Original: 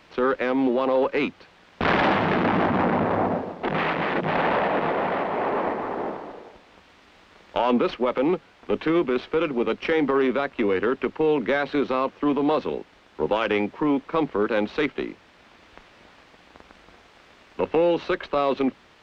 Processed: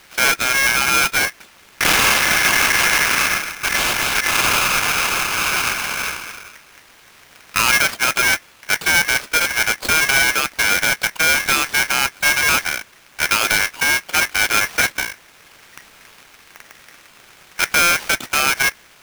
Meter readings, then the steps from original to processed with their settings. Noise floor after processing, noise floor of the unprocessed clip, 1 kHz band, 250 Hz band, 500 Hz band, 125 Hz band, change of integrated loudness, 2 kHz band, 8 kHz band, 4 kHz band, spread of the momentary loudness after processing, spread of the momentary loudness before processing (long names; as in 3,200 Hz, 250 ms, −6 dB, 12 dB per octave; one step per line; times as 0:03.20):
−49 dBFS, −54 dBFS, +3.5 dB, −9.5 dB, −8.0 dB, −0.5 dB, +8.0 dB, +15.0 dB, can't be measured, +18.0 dB, 8 LU, 8 LU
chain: each half-wave held at its own peak
ring modulator with a square carrier 1,900 Hz
level +1.5 dB